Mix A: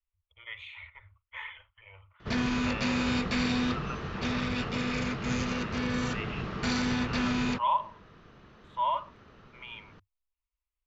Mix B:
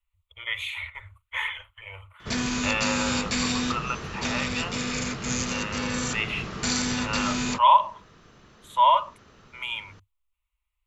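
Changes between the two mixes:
speech +9.5 dB; master: remove air absorption 200 m

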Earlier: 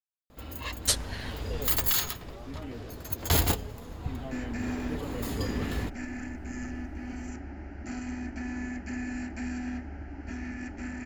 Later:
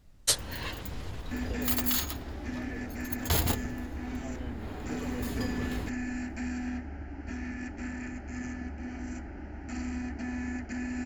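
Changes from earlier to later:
speech: entry -0.60 s; first sound -3.0 dB; second sound: entry -3.00 s

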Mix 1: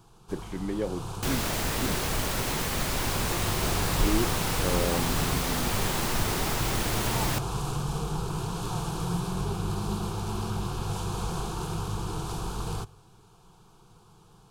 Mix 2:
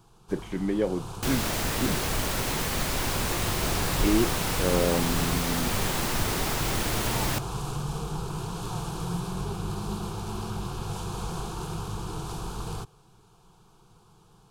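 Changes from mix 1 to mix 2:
speech +4.5 dB; first sound: send off; second sound: send +11.0 dB

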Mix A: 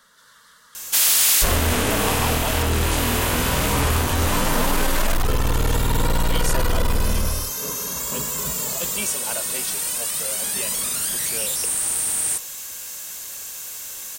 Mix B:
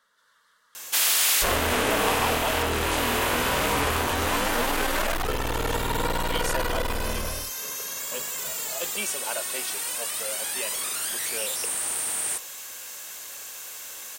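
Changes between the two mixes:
second sound -10.5 dB; master: add tone controls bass -11 dB, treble -6 dB

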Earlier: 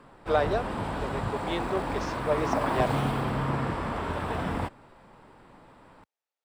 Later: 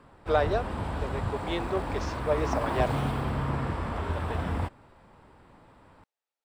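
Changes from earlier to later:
background -3.0 dB; master: add bell 69 Hz +13.5 dB 0.79 oct

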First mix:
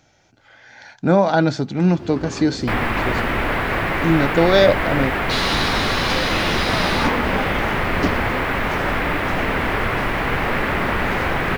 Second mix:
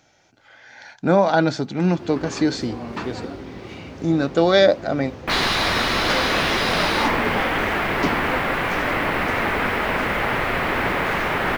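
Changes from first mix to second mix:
second sound: entry +2.60 s; master: add low shelf 150 Hz -8.5 dB

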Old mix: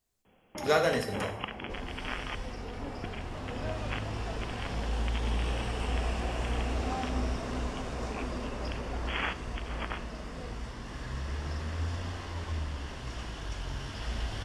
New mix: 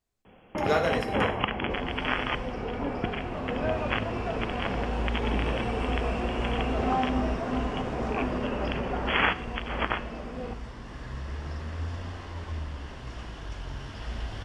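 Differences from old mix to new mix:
first sound +10.0 dB; master: add high shelf 4900 Hz -9 dB

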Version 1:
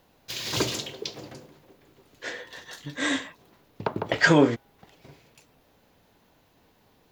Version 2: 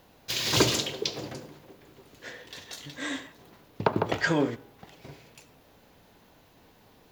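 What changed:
speech -10.0 dB; reverb: on, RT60 0.60 s

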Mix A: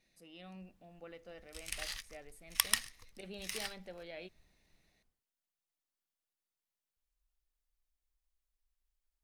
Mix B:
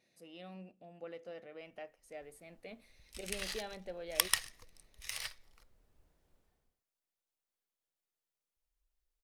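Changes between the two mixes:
background: entry +1.60 s; master: add bell 510 Hz +5.5 dB 1.2 oct

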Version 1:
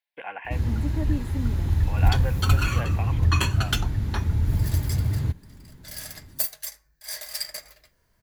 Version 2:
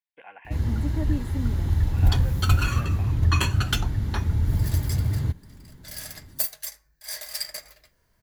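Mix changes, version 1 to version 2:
speech -10.0 dB; first sound: add notch 2500 Hz, Q 12

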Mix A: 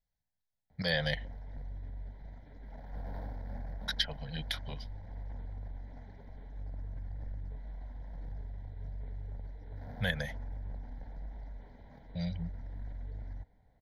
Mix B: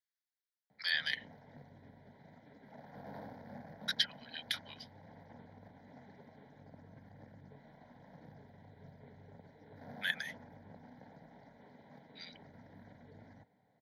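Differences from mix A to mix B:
speech: add HPF 1200 Hz 24 dB/oct; master: add HPF 140 Hz 24 dB/oct

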